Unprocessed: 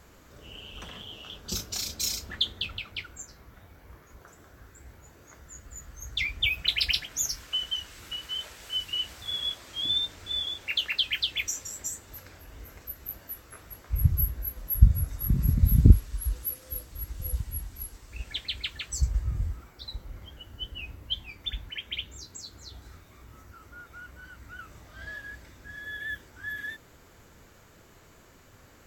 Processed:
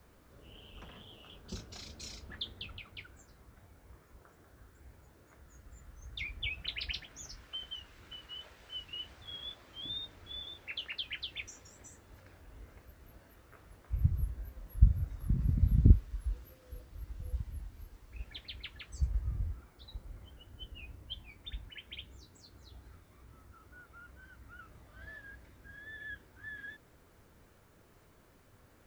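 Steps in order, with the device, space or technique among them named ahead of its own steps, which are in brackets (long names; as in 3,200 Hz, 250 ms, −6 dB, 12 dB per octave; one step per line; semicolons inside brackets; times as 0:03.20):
cassette deck with a dirty head (head-to-tape spacing loss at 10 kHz 21 dB; tape wow and flutter; white noise bed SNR 36 dB)
level −6 dB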